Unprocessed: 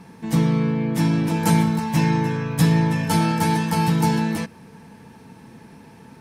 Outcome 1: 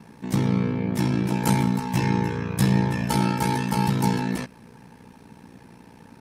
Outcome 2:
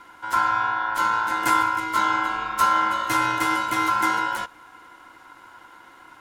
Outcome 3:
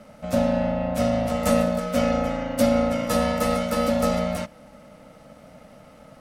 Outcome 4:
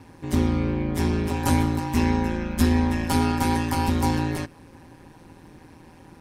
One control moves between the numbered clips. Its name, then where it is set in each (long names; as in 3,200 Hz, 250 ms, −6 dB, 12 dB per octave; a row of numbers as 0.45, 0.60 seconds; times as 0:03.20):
ring modulation, frequency: 30, 1,200, 400, 83 Hertz